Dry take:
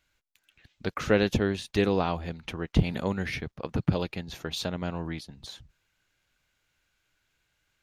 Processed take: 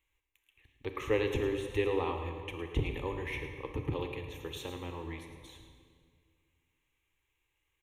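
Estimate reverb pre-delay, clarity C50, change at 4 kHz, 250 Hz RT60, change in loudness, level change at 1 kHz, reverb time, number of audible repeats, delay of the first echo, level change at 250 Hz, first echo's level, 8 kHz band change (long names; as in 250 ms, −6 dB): 28 ms, 5.5 dB, −8.5 dB, 2.3 s, −6.5 dB, −6.0 dB, 2.0 s, 1, 109 ms, −9.5 dB, −11.0 dB, −9.5 dB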